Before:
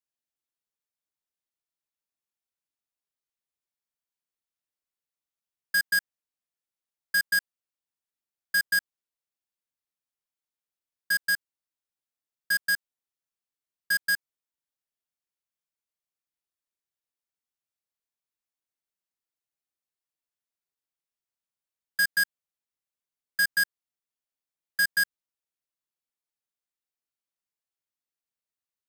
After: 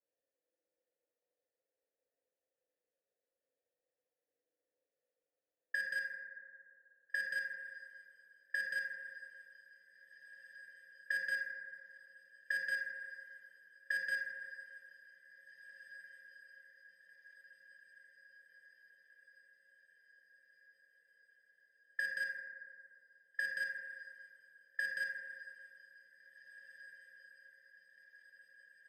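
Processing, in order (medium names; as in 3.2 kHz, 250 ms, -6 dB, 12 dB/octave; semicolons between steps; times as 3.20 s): level-controlled noise filter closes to 990 Hz, open at -26 dBFS; dynamic bell 1.1 kHz, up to -4 dB, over -40 dBFS, Q 1.1; compressor with a negative ratio -29 dBFS, ratio -0.5; peak limiter -26.5 dBFS, peak gain reduction 7.5 dB; vowel filter e; on a send: echo that smears into a reverb 1833 ms, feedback 60%, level -16 dB; on the sum: FDN reverb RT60 2.3 s, low-frequency decay 0.85×, high-frequency decay 0.25×, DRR -2.5 dB; trim +11 dB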